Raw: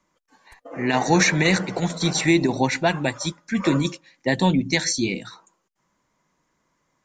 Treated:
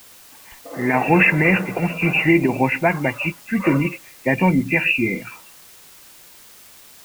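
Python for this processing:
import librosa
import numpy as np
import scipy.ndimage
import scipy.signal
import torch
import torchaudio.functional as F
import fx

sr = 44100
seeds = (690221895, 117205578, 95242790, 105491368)

y = fx.freq_compress(x, sr, knee_hz=2000.0, ratio=4.0)
y = fx.quant_dither(y, sr, seeds[0], bits=8, dither='triangular')
y = y * librosa.db_to_amplitude(2.5)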